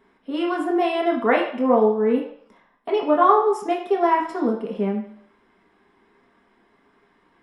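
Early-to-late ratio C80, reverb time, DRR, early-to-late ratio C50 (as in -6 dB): 9.5 dB, 0.60 s, -2.0 dB, 7.0 dB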